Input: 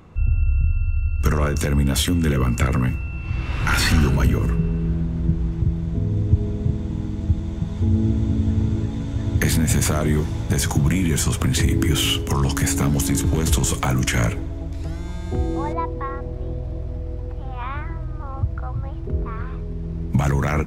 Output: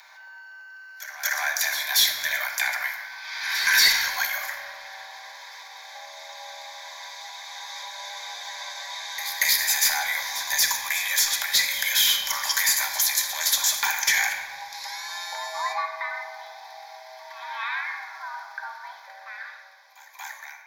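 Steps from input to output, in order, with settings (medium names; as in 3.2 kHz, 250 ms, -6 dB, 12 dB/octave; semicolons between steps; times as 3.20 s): fade out at the end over 2.56 s; high-pass 750 Hz 24 dB/octave; tilt EQ +3 dB/octave; in parallel at +2.5 dB: compression, threshold -33 dBFS, peak gain reduction 20 dB; on the sum: frequency shift +150 Hz; static phaser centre 1.9 kHz, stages 8; saturation -14 dBFS, distortion -15 dB; on a send: reverse echo 233 ms -12.5 dB; on the sum: simulated room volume 1400 m³, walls mixed, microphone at 1.2 m; trim +1.5 dB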